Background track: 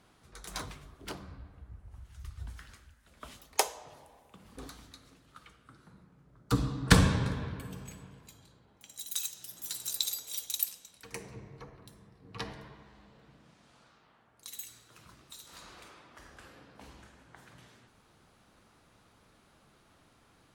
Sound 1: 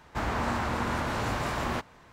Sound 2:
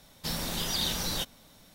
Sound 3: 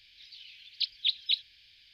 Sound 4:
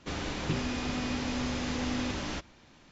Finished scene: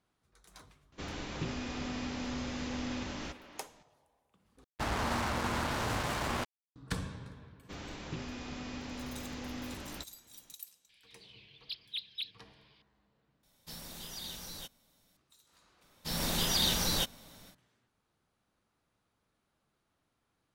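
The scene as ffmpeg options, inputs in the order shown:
-filter_complex "[4:a]asplit=2[a][b];[2:a]asplit=2[c][d];[0:a]volume=-16dB[e];[a]asplit=2[f][g];[g]adelay=340,highpass=300,lowpass=3.4k,asoftclip=type=hard:threshold=-29dB,volume=-10dB[h];[f][h]amix=inputs=2:normalize=0[i];[1:a]acrusher=bits=4:mix=0:aa=0.5[j];[3:a]asplit=2[k][l];[l]highpass=f=720:p=1,volume=10dB,asoftclip=type=tanh:threshold=-15.5dB[m];[k][m]amix=inputs=2:normalize=0,lowpass=f=2.1k:p=1,volume=-6dB[n];[c]highshelf=f=5.5k:g=5[o];[d]dynaudnorm=f=210:g=3:m=14dB[p];[e]asplit=3[q][r][s];[q]atrim=end=4.644[t];[j]atrim=end=2.12,asetpts=PTS-STARTPTS,volume=-4dB[u];[r]atrim=start=6.756:end=13.434[v];[o]atrim=end=1.74,asetpts=PTS-STARTPTS,volume=-15dB[w];[s]atrim=start=15.166[x];[i]atrim=end=2.91,asetpts=PTS-STARTPTS,volume=-6dB,afade=t=in:d=0.004:c=hsin,afade=t=out:st=2.906:d=0.004:c=hsin,adelay=920[y];[b]atrim=end=2.91,asetpts=PTS-STARTPTS,volume=-9.5dB,afade=t=in:d=0.004:c=hsin,afade=t=out:st=2.906:d=0.004:c=hsin,adelay=7630[z];[n]atrim=end=1.93,asetpts=PTS-STARTPTS,volume=-8.5dB,afade=t=in:d=0.004:c=hsin,afade=t=out:st=1.926:d=0.004:c=hsin,adelay=10890[aa];[p]atrim=end=1.74,asetpts=PTS-STARTPTS,volume=-12dB,afade=t=in:d=0.004:c=hsin,afade=t=out:st=1.736:d=0.004:c=hsin,adelay=15810[ab];[t][u]acrossfade=d=0.004:c1=hsin:c2=hsin[ac];[ac][v]acrossfade=d=0.004:c1=hsin:c2=hsin[ad];[ad][w]acrossfade=d=0.004:c1=hsin:c2=hsin[ae];[ae][x]acrossfade=d=0.004:c1=hsin:c2=hsin[af];[af][y][z][aa][ab]amix=inputs=5:normalize=0"

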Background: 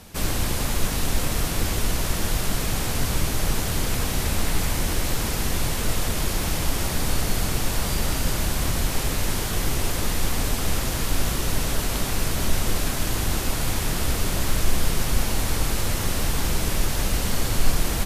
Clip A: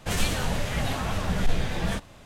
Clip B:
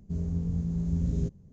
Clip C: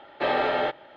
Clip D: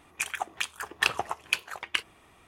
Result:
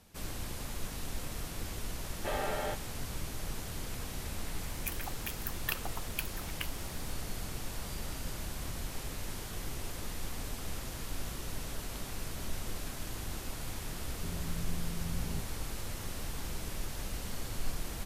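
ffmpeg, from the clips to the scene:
-filter_complex "[0:a]volume=-15.5dB[a];[4:a]aexciter=amount=14.5:drive=8.3:freq=12k[b];[3:a]atrim=end=0.96,asetpts=PTS-STARTPTS,volume=-11.5dB,afade=t=in:d=0.004:c=hsin,afade=t=out:st=0.956:d=0.004:c=hsin,adelay=2040[c];[b]atrim=end=2.47,asetpts=PTS-STARTPTS,volume=-12.5dB,afade=t=in:d=0.004:c=hsin,afade=t=out:st=2.466:d=0.004:c=hsin,adelay=4660[d];[2:a]atrim=end=1.52,asetpts=PTS-STARTPTS,volume=-11dB,afade=t=in:d=0.004:c=hsin,afade=t=out:st=1.516:d=0.004:c=hsin,adelay=14130[e];[a][c][d][e]amix=inputs=4:normalize=0"

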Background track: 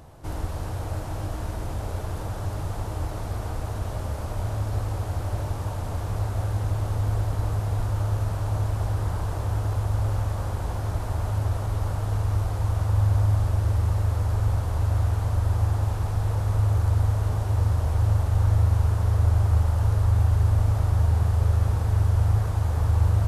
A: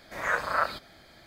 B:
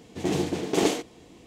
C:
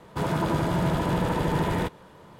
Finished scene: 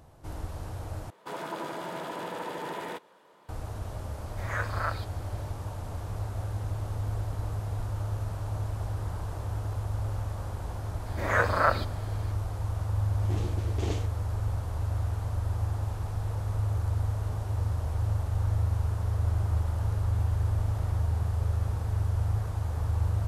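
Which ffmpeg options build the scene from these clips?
-filter_complex "[3:a]asplit=2[a][b];[1:a]asplit=2[c][d];[0:a]volume=-7dB[e];[a]highpass=380[f];[d]equalizer=f=300:w=0.44:g=9.5[g];[2:a]acrossover=split=8400[h][i];[i]acompressor=threshold=-59dB:ratio=4:attack=1:release=60[j];[h][j]amix=inputs=2:normalize=0[k];[b]acompressor=threshold=-30dB:ratio=6:attack=3.2:release=140:knee=1:detection=peak[l];[e]asplit=2[m][n];[m]atrim=end=1.104[o];[f]atrim=end=2.39,asetpts=PTS-STARTPTS,volume=-7dB[p];[n]atrim=start=3.486[q];[c]atrim=end=1.26,asetpts=PTS-STARTPTS,volume=-6dB,afade=t=in:d=0.004:c=hsin,afade=t=out:st=1.256:d=0.004:c=hsin,adelay=4260[r];[g]atrim=end=1.26,asetpts=PTS-STARTPTS,volume=-0.5dB,afade=t=in:d=0.004:c=hsin,afade=t=out:st=1.256:d=0.004:c=hsin,adelay=487746S[s];[k]atrim=end=1.46,asetpts=PTS-STARTPTS,volume=-13dB,afade=t=in:d=0.004:c=hsin,afade=t=out:st=1.456:d=0.004:c=hsin,adelay=13050[t];[l]atrim=end=2.39,asetpts=PTS-STARTPTS,volume=-17dB,afade=t=in:d=0.004:c=hsin,afade=t=out:st=2.386:d=0.004:c=hsin,adelay=19100[u];[o][p]acrossfade=d=0.004:c1=hsin:c2=hsin[v];[v][q]acrossfade=d=0.004:c1=hsin:c2=hsin[w];[w][r][s][t][u]amix=inputs=5:normalize=0"

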